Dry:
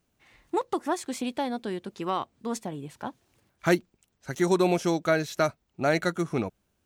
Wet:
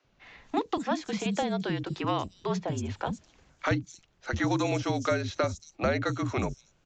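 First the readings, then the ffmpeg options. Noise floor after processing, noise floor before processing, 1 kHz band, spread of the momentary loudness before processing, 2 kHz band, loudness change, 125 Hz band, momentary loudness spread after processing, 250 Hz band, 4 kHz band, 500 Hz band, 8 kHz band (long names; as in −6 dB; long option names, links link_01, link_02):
−68 dBFS, −75 dBFS, −1.5 dB, 13 LU, −2.0 dB, −2.5 dB, +2.5 dB, 7 LU, −2.0 dB, 0.0 dB, −4.0 dB, −3.0 dB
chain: -filter_complex "[0:a]aresample=16000,aresample=44100,afreqshift=-49,acrossover=split=500|2000[link_01][link_02][link_03];[link_01]acompressor=threshold=-35dB:ratio=4[link_04];[link_02]acompressor=threshold=-40dB:ratio=4[link_05];[link_03]acompressor=threshold=-46dB:ratio=4[link_06];[link_04][link_05][link_06]amix=inputs=3:normalize=0,acrossover=split=290|5700[link_07][link_08][link_09];[link_07]adelay=40[link_10];[link_09]adelay=230[link_11];[link_10][link_08][link_11]amix=inputs=3:normalize=0,volume=8dB"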